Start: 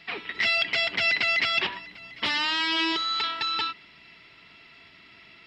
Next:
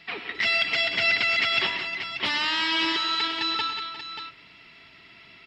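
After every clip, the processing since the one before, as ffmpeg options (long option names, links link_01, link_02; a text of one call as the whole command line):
ffmpeg -i in.wav -af "aecho=1:1:103|126|183|354|584:0.2|0.224|0.282|0.211|0.355" out.wav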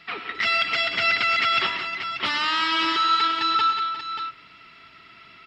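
ffmpeg -i in.wav -af "equalizer=frequency=1300:width=5.1:gain=11.5" out.wav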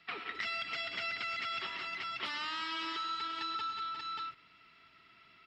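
ffmpeg -i in.wav -filter_complex "[0:a]agate=range=-8dB:threshold=-36dB:ratio=16:detection=peak,acrossover=split=240|5700[link_01][link_02][link_03];[link_01]acompressor=threshold=-58dB:ratio=4[link_04];[link_02]acompressor=threshold=-33dB:ratio=4[link_05];[link_03]acompressor=threshold=-50dB:ratio=4[link_06];[link_04][link_05][link_06]amix=inputs=3:normalize=0,volume=-5dB" out.wav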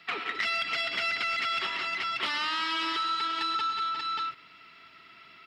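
ffmpeg -i in.wav -filter_complex "[0:a]lowshelf=frequency=110:gain=-10.5,asplit=2[link_01][link_02];[link_02]asoftclip=type=tanh:threshold=-35dB,volume=-5dB[link_03];[link_01][link_03]amix=inputs=2:normalize=0,volume=5dB" out.wav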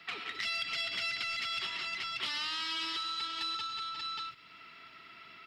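ffmpeg -i in.wav -filter_complex "[0:a]acrossover=split=160|3000[link_01][link_02][link_03];[link_02]acompressor=threshold=-47dB:ratio=2.5[link_04];[link_01][link_04][link_03]amix=inputs=3:normalize=0" out.wav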